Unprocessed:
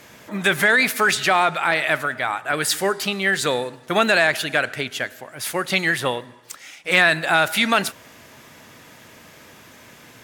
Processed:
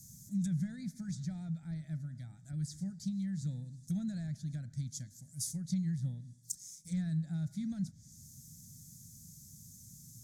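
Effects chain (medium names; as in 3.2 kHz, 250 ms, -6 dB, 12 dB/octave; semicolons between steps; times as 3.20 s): low-pass that closes with the level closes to 1.9 kHz, closed at -18.5 dBFS; elliptic band-stop 170–6300 Hz, stop band 40 dB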